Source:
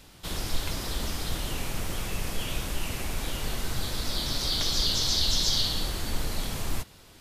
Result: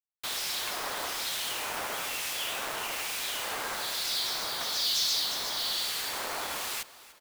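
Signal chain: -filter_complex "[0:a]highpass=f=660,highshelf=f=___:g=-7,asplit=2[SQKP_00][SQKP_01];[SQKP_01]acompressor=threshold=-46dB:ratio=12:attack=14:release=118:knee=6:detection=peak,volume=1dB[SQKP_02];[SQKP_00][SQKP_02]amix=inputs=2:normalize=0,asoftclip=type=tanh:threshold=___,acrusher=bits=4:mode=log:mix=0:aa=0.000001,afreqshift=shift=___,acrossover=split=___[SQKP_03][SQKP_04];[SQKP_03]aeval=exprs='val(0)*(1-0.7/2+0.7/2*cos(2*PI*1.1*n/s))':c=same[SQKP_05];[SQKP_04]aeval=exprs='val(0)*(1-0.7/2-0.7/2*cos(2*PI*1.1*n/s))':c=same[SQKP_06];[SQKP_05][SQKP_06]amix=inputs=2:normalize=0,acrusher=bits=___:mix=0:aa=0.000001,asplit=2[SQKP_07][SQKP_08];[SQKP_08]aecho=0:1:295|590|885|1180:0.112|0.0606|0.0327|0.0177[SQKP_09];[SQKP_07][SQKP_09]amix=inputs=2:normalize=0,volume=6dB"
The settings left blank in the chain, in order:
4200, -28dB, 72, 2100, 6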